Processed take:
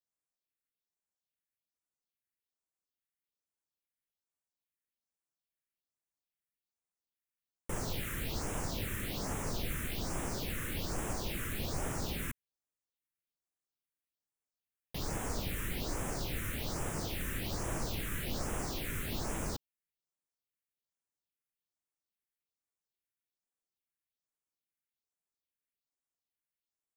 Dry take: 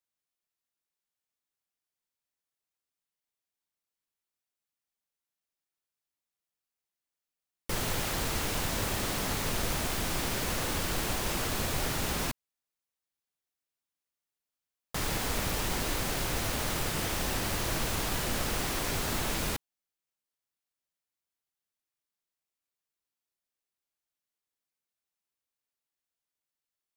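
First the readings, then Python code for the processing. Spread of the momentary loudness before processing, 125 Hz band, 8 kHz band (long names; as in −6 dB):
2 LU, −3.5 dB, −7.5 dB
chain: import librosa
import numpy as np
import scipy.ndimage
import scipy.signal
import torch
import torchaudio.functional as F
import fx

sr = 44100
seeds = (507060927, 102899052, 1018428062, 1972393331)

y = fx.phaser_stages(x, sr, stages=4, low_hz=750.0, high_hz=4300.0, hz=1.2, feedback_pct=20)
y = y * librosa.db_to_amplitude(-4.5)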